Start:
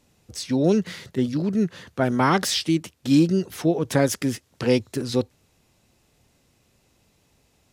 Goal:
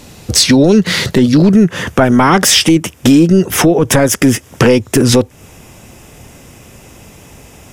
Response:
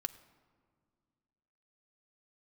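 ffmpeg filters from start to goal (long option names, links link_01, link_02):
-af "asetnsamples=nb_out_samples=441:pad=0,asendcmd='1.52 equalizer g -13.5',equalizer=frequency=4200:width_type=o:width=0.31:gain=2,acompressor=threshold=-29dB:ratio=8,apsyclip=28dB,volume=-2dB"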